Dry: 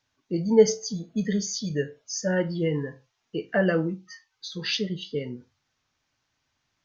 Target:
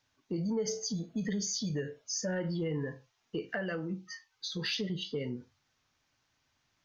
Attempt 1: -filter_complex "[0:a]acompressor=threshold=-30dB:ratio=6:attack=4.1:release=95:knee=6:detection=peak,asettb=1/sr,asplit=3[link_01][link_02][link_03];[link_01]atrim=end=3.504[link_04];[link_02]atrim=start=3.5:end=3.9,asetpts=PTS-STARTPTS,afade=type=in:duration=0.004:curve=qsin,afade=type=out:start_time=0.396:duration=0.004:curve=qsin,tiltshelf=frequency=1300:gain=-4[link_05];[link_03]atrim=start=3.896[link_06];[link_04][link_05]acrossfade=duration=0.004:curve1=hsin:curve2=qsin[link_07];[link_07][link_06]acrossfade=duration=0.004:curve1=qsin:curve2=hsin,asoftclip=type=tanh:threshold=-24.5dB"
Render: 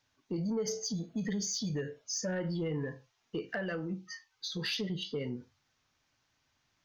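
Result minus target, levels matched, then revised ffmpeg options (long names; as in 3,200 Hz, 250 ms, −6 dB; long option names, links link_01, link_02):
soft clipping: distortion +11 dB
-filter_complex "[0:a]acompressor=threshold=-30dB:ratio=6:attack=4.1:release=95:knee=6:detection=peak,asettb=1/sr,asplit=3[link_01][link_02][link_03];[link_01]atrim=end=3.504[link_04];[link_02]atrim=start=3.5:end=3.9,asetpts=PTS-STARTPTS,afade=type=in:duration=0.004:curve=qsin,afade=type=out:start_time=0.396:duration=0.004:curve=qsin,tiltshelf=frequency=1300:gain=-4[link_05];[link_03]atrim=start=3.896[link_06];[link_04][link_05]acrossfade=duration=0.004:curve1=hsin:curve2=qsin[link_07];[link_07][link_06]acrossfade=duration=0.004:curve1=qsin:curve2=hsin,asoftclip=type=tanh:threshold=-18.5dB"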